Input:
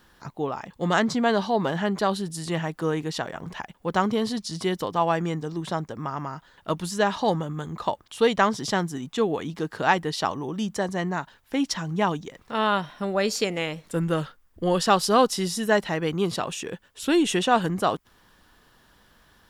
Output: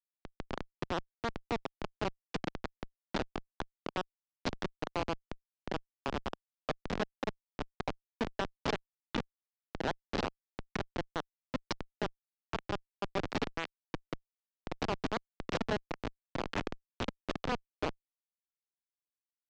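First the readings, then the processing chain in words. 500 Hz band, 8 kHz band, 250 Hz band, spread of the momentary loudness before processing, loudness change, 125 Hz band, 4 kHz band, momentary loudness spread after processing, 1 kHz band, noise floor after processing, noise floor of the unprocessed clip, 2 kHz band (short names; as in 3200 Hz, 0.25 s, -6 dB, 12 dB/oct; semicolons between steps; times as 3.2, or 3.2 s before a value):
-14.5 dB, -20.0 dB, -14.5 dB, 11 LU, -14.0 dB, -13.5 dB, -12.5 dB, 9 LU, -14.5 dB, under -85 dBFS, -60 dBFS, -12.0 dB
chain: compressor 12:1, threshold -29 dBFS, peak gain reduction 16.5 dB; bell 230 Hz -6 dB 2.8 oct; Schmitt trigger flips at -28 dBFS; LPF 7000 Hz 24 dB/oct; three-band isolator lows -14 dB, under 180 Hz, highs -14 dB, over 5100 Hz; gain +11.5 dB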